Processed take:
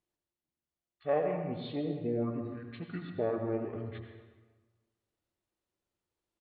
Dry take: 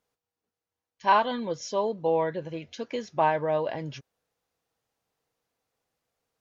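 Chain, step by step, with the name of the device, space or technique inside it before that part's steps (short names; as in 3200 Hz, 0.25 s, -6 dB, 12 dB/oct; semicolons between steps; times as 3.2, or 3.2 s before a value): monster voice (pitch shift -5.5 st; formant shift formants -2.5 st; low shelf 140 Hz +4.5 dB; reverb RT60 1.4 s, pre-delay 77 ms, DRR 4.5 dB); gain -9 dB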